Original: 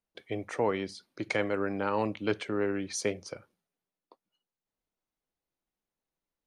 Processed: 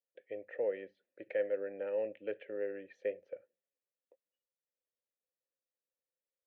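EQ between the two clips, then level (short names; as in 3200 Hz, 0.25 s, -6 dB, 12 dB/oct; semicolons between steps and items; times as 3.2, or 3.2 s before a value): vowel filter e; air absorption 230 m; bell 4800 Hz -13 dB 0.61 oct; +2.0 dB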